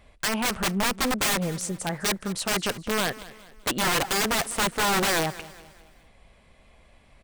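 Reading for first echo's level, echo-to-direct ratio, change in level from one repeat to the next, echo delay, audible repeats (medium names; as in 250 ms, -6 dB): -18.0 dB, -17.0 dB, -7.5 dB, 206 ms, 3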